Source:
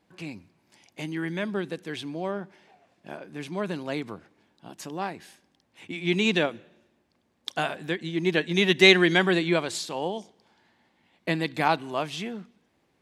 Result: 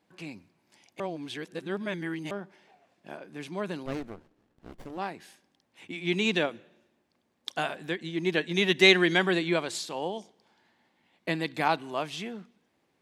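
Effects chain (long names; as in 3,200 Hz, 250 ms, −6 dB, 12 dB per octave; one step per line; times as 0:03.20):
low-shelf EQ 84 Hz −10.5 dB
0:01.00–0:02.31: reverse
0:03.86–0:04.98: windowed peak hold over 33 samples
level −2.5 dB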